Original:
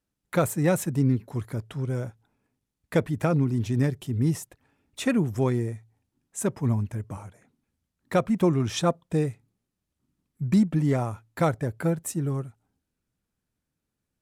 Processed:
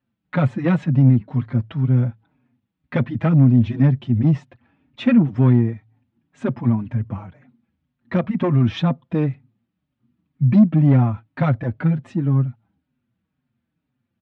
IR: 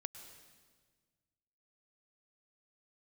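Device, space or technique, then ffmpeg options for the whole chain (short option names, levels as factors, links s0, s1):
barber-pole flanger into a guitar amplifier: -filter_complex "[0:a]asplit=2[s0][s1];[s1]adelay=5.2,afreqshift=-2[s2];[s0][s2]amix=inputs=2:normalize=1,asoftclip=type=tanh:threshold=0.1,highpass=100,equalizer=f=130:t=q:w=4:g=6,equalizer=f=240:t=q:w=4:g=8,equalizer=f=420:t=q:w=4:g=-7,lowpass=f=3400:w=0.5412,lowpass=f=3400:w=1.3066,lowshelf=f=140:g=4.5,volume=2.51"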